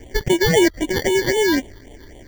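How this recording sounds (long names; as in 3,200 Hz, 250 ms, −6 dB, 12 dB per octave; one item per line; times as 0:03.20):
aliases and images of a low sample rate 1,300 Hz, jitter 0%
phaser sweep stages 6, 3.8 Hz, lowest notch 670–1,400 Hz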